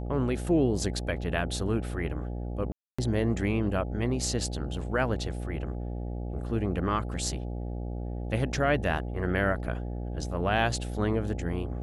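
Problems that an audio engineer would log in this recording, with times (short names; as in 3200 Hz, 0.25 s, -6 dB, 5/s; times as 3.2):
buzz 60 Hz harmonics 14 -34 dBFS
2.72–2.98 gap 0.265 s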